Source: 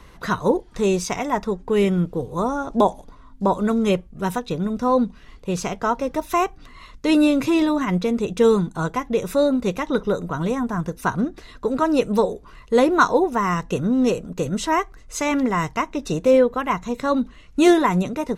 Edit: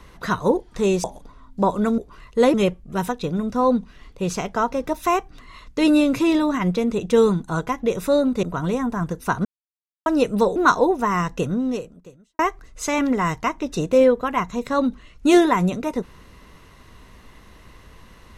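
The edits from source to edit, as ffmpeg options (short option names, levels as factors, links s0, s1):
-filter_complex "[0:a]asplit=9[s0][s1][s2][s3][s4][s5][s6][s7][s8];[s0]atrim=end=1.042[s9];[s1]atrim=start=2.868:end=3.812[s10];[s2]atrim=start=12.328:end=12.892[s11];[s3]atrim=start=3.808:end=9.702[s12];[s4]atrim=start=10.198:end=11.22,asetpts=PTS-STARTPTS,afade=t=out:st=1.018:d=0.004:c=hsin[s13];[s5]atrim=start=11.22:end=11.83,asetpts=PTS-STARTPTS,volume=0[s14];[s6]atrim=start=11.83:end=12.332,asetpts=PTS-STARTPTS,afade=t=in:d=0.004:c=hsin[s15];[s7]atrim=start=12.888:end=14.72,asetpts=PTS-STARTPTS,afade=t=out:st=0.872:d=0.96:c=qua[s16];[s8]atrim=start=14.72,asetpts=PTS-STARTPTS,afade=t=in:d=0.004:c=hsin[s17];[s9][s10]acrossfade=d=0.004:c1=hsin:c2=hsin[s18];[s18][s11]acrossfade=d=0.004:c1=hsin:c2=hsin[s19];[s19][s12]acrossfade=d=0.004:c1=hsin:c2=hsin[s20];[s13][s14][s15]concat=n=3:v=0:a=1[s21];[s20][s21]acrossfade=d=0.004:c1=hsin:c2=hsin[s22];[s16][s17]concat=n=2:v=0:a=1[s23];[s22][s23]acrossfade=d=0.004:c1=hsin:c2=hsin"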